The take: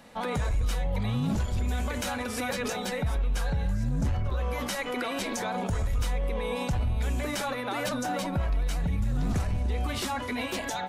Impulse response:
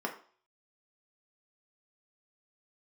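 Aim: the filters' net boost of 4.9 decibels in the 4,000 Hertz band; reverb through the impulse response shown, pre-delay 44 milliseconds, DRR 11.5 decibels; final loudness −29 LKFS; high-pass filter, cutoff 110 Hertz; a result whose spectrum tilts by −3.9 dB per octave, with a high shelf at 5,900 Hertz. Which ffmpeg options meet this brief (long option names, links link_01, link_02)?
-filter_complex "[0:a]highpass=110,equalizer=frequency=4000:width_type=o:gain=4.5,highshelf=frequency=5900:gain=4.5,asplit=2[link_01][link_02];[1:a]atrim=start_sample=2205,adelay=44[link_03];[link_02][link_03]afir=irnorm=-1:irlink=0,volume=-17dB[link_04];[link_01][link_04]amix=inputs=2:normalize=0,volume=2dB"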